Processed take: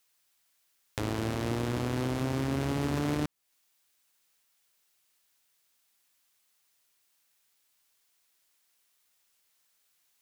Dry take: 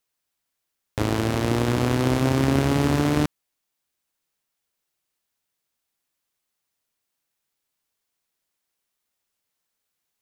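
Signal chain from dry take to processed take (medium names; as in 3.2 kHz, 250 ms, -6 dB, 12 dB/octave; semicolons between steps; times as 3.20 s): peak limiter -18.5 dBFS, peak gain reduction 11.5 dB; tape noise reduction on one side only encoder only; trim -1.5 dB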